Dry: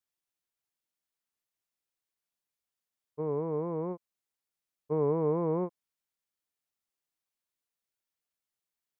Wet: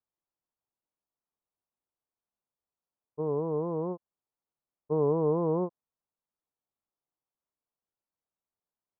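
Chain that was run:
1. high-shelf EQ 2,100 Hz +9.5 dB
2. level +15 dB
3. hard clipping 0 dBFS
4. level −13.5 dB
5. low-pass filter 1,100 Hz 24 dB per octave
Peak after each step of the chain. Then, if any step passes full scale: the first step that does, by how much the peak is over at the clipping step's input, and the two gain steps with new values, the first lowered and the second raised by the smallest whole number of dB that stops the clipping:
−17.5, −2.5, −2.5, −16.0, −16.0 dBFS
no step passes full scale

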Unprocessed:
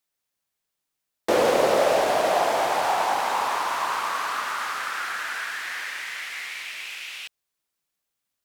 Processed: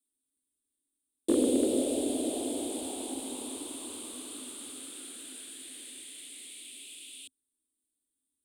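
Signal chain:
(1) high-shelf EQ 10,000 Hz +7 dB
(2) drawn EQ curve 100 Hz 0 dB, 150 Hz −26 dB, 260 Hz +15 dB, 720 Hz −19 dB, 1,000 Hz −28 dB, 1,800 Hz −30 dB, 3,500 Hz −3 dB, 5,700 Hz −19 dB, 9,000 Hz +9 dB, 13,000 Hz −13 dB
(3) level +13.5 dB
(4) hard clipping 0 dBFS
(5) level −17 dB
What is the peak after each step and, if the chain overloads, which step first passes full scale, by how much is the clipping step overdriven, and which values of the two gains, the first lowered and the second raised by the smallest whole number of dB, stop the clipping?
−8.5, −10.5, +3.0, 0.0, −17.0 dBFS
step 3, 3.0 dB
step 3 +10.5 dB, step 5 −14 dB

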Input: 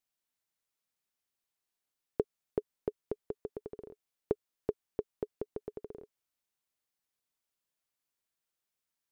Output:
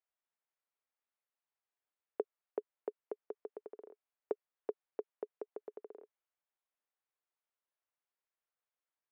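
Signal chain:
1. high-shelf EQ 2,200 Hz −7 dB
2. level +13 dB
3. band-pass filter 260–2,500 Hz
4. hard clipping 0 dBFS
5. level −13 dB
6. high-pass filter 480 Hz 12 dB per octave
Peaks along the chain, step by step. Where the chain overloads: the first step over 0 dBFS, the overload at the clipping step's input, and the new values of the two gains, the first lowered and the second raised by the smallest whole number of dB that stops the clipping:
−15.0, −2.0, −4.0, −4.0, −17.0, −22.0 dBFS
no step passes full scale

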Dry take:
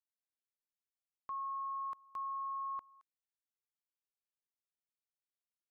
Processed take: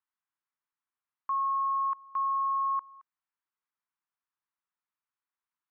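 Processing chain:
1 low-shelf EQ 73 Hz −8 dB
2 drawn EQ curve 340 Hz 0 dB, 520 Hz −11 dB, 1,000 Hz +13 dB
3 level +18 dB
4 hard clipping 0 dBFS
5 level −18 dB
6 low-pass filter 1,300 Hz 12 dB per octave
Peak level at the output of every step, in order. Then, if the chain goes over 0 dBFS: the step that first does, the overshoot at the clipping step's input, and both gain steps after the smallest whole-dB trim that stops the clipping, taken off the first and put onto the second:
−36.5, −23.5, −5.5, −5.5, −23.5, −25.0 dBFS
no step passes full scale

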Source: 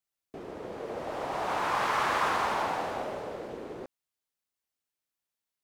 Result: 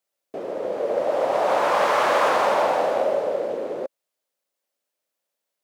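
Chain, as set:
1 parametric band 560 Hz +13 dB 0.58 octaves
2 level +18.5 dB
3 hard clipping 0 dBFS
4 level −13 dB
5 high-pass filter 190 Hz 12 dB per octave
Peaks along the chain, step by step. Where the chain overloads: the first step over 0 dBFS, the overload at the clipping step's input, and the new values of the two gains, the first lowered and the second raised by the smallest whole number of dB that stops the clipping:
−13.0, +5.5, 0.0, −13.0, −10.0 dBFS
step 2, 5.5 dB
step 2 +12.5 dB, step 4 −7 dB

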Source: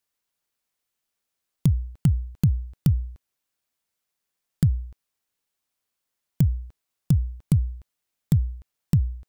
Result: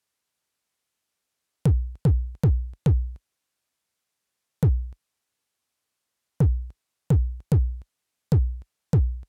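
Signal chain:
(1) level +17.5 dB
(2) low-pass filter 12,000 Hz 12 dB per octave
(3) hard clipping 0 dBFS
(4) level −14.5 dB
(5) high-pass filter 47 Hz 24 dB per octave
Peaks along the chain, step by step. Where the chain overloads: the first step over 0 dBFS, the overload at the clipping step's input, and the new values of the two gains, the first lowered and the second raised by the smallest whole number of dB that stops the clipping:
+9.0, +9.0, 0.0, −14.5, −10.0 dBFS
step 1, 9.0 dB
step 1 +8.5 dB, step 4 −5.5 dB

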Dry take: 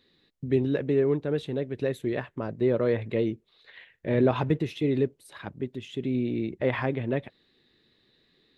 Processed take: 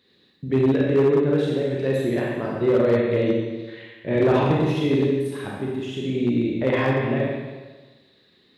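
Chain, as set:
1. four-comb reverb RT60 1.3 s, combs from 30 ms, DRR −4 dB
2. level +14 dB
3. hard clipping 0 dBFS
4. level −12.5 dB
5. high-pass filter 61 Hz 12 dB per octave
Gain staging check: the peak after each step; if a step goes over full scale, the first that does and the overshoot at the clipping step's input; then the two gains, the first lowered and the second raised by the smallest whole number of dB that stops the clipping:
−7.5, +6.5, 0.0, −12.5, −9.5 dBFS
step 2, 6.5 dB
step 2 +7 dB, step 4 −5.5 dB

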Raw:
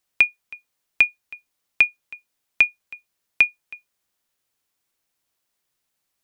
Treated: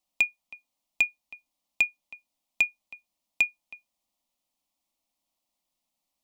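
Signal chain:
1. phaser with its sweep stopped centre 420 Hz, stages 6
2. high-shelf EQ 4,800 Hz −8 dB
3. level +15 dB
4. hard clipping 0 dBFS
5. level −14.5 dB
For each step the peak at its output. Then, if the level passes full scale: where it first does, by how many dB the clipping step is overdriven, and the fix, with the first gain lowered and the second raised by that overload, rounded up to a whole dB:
−8.5, −10.0, +5.0, 0.0, −14.5 dBFS
step 3, 5.0 dB
step 3 +10 dB, step 5 −9.5 dB

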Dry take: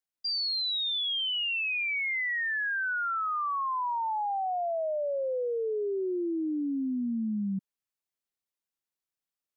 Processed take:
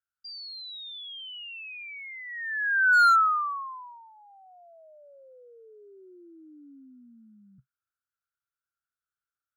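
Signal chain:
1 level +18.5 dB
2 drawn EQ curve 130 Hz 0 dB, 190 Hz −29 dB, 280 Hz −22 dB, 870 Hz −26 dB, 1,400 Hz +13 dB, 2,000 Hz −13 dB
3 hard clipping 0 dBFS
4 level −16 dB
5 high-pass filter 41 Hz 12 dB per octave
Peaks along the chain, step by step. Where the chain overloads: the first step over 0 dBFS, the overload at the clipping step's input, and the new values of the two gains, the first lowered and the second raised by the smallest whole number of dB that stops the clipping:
−9.0, +4.0, 0.0, −16.0, −15.5 dBFS
step 2, 4.0 dB
step 1 +14.5 dB, step 4 −12 dB

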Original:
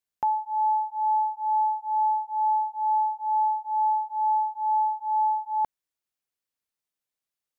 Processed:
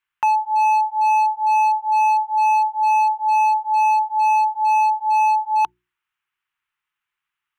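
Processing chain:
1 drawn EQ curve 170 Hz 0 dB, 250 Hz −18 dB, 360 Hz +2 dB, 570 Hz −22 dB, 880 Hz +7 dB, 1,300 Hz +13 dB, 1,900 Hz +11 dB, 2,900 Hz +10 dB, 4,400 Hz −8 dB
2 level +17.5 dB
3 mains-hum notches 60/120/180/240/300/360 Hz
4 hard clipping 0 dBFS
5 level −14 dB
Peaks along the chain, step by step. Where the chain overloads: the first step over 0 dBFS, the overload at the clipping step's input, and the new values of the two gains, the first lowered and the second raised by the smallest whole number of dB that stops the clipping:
−12.0, +5.5, +5.5, 0.0, −14.0 dBFS
step 2, 5.5 dB
step 2 +11.5 dB, step 5 −8 dB

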